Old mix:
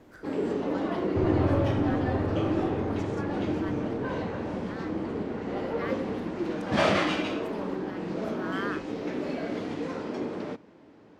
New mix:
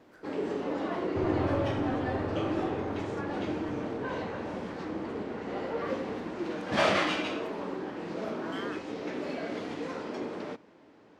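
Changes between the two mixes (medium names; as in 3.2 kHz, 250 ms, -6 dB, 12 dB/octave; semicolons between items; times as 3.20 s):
speech -7.0 dB; master: add bass shelf 340 Hz -7.5 dB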